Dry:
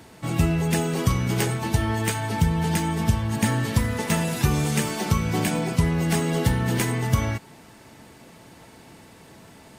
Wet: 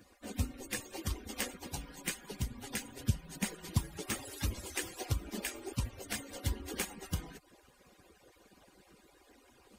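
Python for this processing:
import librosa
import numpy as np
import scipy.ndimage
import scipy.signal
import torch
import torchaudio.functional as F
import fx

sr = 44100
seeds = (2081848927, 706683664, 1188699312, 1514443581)

y = fx.hpss_only(x, sr, part='percussive')
y = F.gain(torch.from_numpy(y), -8.0).numpy()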